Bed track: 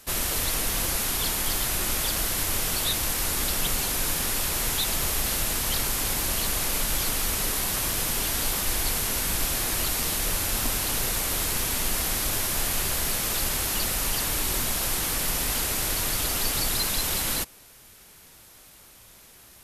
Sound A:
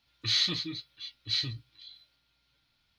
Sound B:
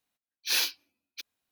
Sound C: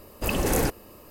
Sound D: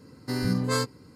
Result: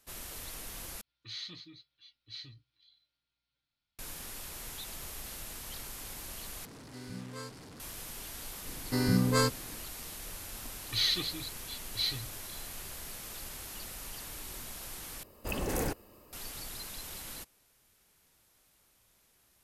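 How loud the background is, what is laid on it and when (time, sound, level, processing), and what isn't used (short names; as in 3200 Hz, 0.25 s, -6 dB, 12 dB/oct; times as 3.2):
bed track -17 dB
1.01 replace with A -15.5 dB
6.65 replace with D -17.5 dB + delta modulation 64 kbps, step -26.5 dBFS
8.64 add D -0.5 dB
10.68 add A -3.5 dB + phaser 1.1 Hz
15.23 replace with C -9 dB
not used: B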